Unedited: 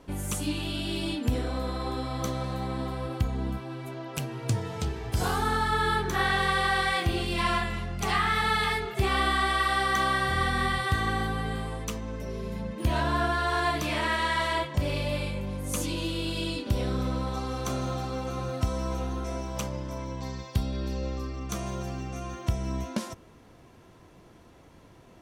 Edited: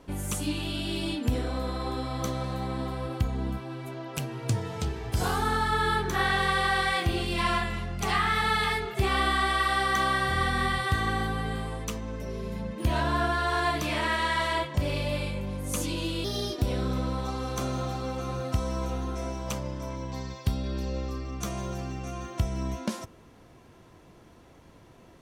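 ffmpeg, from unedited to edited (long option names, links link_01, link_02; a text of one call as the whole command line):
ffmpeg -i in.wav -filter_complex "[0:a]asplit=3[link_01][link_02][link_03];[link_01]atrim=end=16.244[link_04];[link_02]atrim=start=16.24:end=16.71,asetpts=PTS-STARTPTS,asetrate=54243,aresample=44100,atrim=end_sample=16851,asetpts=PTS-STARTPTS[link_05];[link_03]atrim=start=16.706[link_06];[link_04][link_05]acrossfade=duration=0.004:curve1=hsin:curve2=hsin[link_07];[link_07][link_06]acrossfade=duration=0.004:curve1=hsin:curve2=hsin" out.wav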